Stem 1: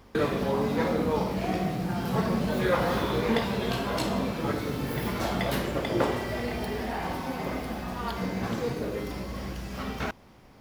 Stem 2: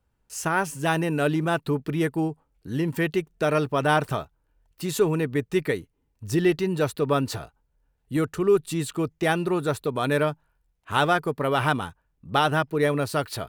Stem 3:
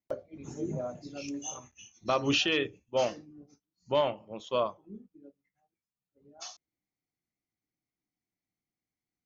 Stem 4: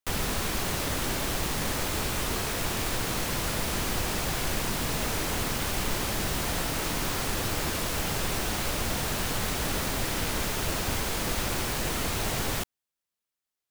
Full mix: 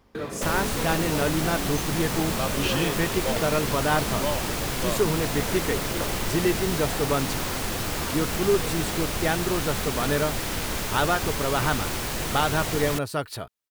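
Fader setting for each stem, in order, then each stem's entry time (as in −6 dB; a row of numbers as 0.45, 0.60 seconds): −6.5, −2.5, −2.5, +0.5 decibels; 0.00, 0.00, 0.30, 0.35 seconds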